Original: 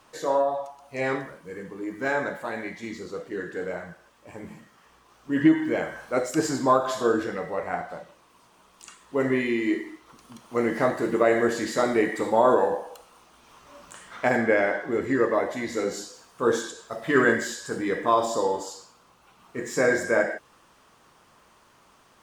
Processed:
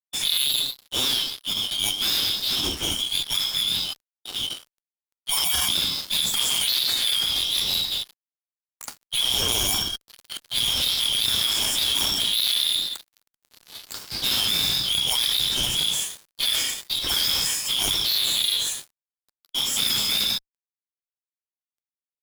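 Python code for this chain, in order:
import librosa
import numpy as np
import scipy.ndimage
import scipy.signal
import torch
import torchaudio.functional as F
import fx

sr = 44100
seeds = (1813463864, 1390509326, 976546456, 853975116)

y = fx.band_swap(x, sr, width_hz=2000)
y = fx.fuzz(y, sr, gain_db=38.0, gate_db=-46.0)
y = fx.formant_shift(y, sr, semitones=6)
y = y * librosa.db_to_amplitude(-8.5)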